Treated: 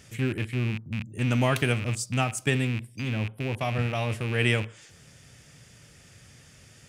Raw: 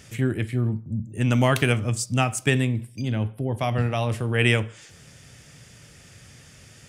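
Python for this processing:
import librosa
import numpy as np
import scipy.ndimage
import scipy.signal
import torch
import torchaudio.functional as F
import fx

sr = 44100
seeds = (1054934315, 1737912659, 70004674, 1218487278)

y = fx.rattle_buzz(x, sr, strikes_db=-28.0, level_db=-21.0)
y = y * librosa.db_to_amplitude(-4.0)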